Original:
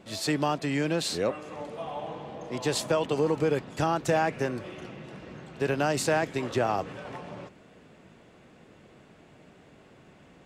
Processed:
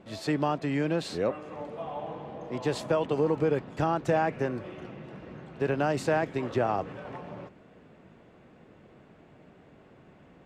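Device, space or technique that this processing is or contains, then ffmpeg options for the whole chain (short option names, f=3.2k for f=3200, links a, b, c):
through cloth: -af "highshelf=f=3.6k:g=-14"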